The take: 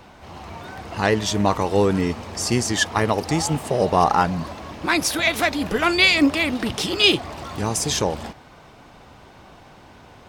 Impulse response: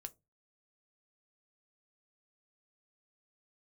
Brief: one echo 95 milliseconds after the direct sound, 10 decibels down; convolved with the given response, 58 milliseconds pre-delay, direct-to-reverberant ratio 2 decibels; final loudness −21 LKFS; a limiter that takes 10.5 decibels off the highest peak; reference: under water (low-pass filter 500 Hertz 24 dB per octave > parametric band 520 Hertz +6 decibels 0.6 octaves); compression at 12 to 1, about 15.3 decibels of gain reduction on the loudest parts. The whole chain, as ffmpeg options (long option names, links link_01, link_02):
-filter_complex "[0:a]acompressor=threshold=-27dB:ratio=12,alimiter=limit=-22.5dB:level=0:latency=1,aecho=1:1:95:0.316,asplit=2[link_01][link_02];[1:a]atrim=start_sample=2205,adelay=58[link_03];[link_02][link_03]afir=irnorm=-1:irlink=0,volume=3dB[link_04];[link_01][link_04]amix=inputs=2:normalize=0,lowpass=frequency=500:width=0.5412,lowpass=frequency=500:width=1.3066,equalizer=frequency=520:width_type=o:width=0.6:gain=6,volume=12.5dB"